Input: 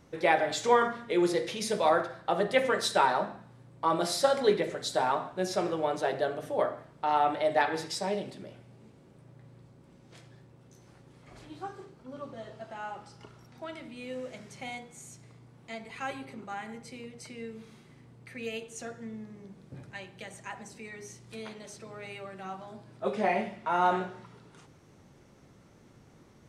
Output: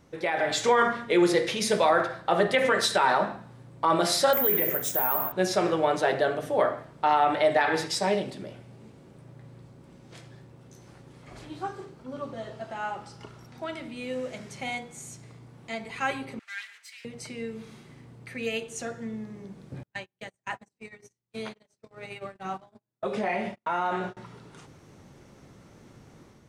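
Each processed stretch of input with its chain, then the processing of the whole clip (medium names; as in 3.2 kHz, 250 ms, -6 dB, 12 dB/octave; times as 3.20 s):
4.33–5.32 s: Butterworth band-stop 4.5 kHz, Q 1.7 + careless resampling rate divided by 3×, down none, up zero stuff
16.39–17.05 s: comb filter that takes the minimum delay 4.5 ms + Chebyshev high-pass 1.7 kHz, order 3 + treble shelf 11 kHz -8.5 dB
19.83–24.17 s: compression 5:1, threshold -31 dBFS + gate -43 dBFS, range -42 dB
whole clip: dynamic bell 1.9 kHz, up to +4 dB, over -41 dBFS, Q 0.88; peak limiter -17.5 dBFS; level rider gain up to 5.5 dB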